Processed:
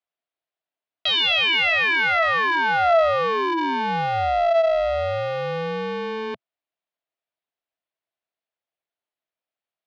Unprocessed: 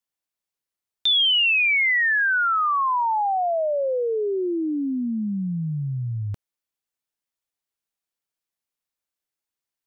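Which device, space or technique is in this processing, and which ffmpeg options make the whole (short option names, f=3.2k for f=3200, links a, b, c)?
ring modulator pedal into a guitar cabinet: -af "aeval=exprs='val(0)*sgn(sin(2*PI*330*n/s))':c=same,highpass=100,equalizer=f=130:t=q:w=4:g=-9,equalizer=f=220:t=q:w=4:g=-6,equalizer=f=660:t=q:w=4:g=10,lowpass=f=3.8k:w=0.5412,lowpass=f=3.8k:w=1.3066"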